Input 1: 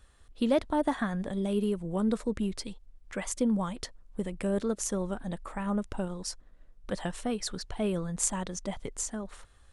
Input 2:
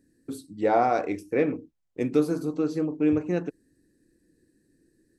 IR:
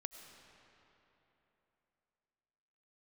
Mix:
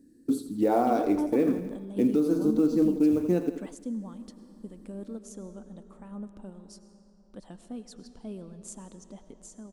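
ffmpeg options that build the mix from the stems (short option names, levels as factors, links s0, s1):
-filter_complex "[0:a]adelay=450,volume=0.282,asplit=2[s0][s1];[s1]volume=0.668[s2];[1:a]acrusher=bits=7:mode=log:mix=0:aa=0.000001,volume=1.19,asplit=3[s3][s4][s5];[s4]volume=0.282[s6];[s5]apad=whole_len=448838[s7];[s0][s7]sidechaingate=range=0.251:threshold=0.002:ratio=16:detection=peak[s8];[2:a]atrim=start_sample=2205[s9];[s2][s9]afir=irnorm=-1:irlink=0[s10];[s6]aecho=0:1:84|168|252|336|420|504|588:1|0.51|0.26|0.133|0.0677|0.0345|0.0176[s11];[s8][s3][s10][s11]amix=inputs=4:normalize=0,equalizer=f=125:t=o:w=1:g=-4,equalizer=f=250:t=o:w=1:g=10,equalizer=f=2000:t=o:w=1:g=-7,alimiter=limit=0.188:level=0:latency=1:release=315"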